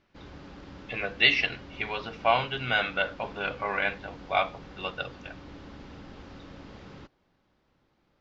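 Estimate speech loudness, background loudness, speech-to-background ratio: −28.0 LKFS, −46.5 LKFS, 18.5 dB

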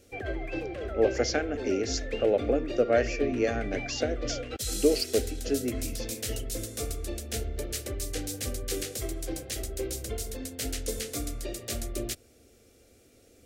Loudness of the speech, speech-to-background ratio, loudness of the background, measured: −29.0 LKFS, 5.5 dB, −34.5 LKFS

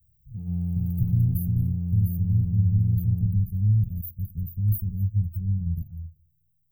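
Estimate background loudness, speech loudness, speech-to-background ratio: −29.5 LKFS, −26.0 LKFS, 3.5 dB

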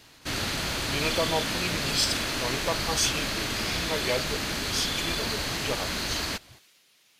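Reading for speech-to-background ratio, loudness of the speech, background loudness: −3.0 dB, −31.5 LKFS, −28.5 LKFS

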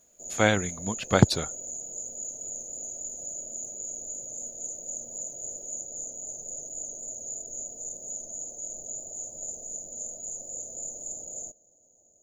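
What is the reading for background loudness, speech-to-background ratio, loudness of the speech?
−35.0 LKFS, 10.0 dB, −25.0 LKFS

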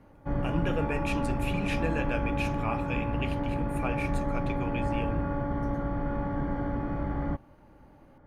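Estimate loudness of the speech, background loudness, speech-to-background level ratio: −35.5 LKFS, −31.5 LKFS, −4.0 dB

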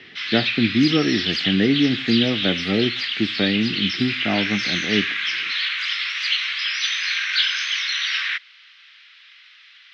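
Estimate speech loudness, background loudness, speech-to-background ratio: −22.5 LKFS, −22.0 LKFS, −0.5 dB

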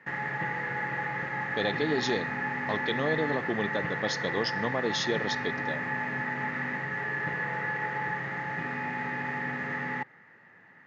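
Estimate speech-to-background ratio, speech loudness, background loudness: −0.5 dB, −32.0 LKFS, −31.5 LKFS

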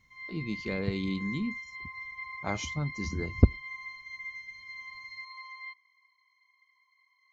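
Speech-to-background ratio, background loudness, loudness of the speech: 8.0 dB, −40.5 LKFS, −32.5 LKFS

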